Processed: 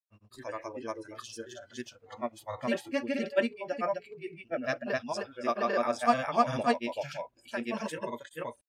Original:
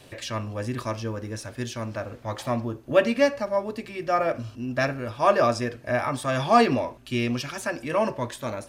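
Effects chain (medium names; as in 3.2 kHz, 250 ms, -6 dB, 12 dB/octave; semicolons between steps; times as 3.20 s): granulator, spray 473 ms, pitch spread up and down by 0 st; spectral noise reduction 19 dB; trim -5 dB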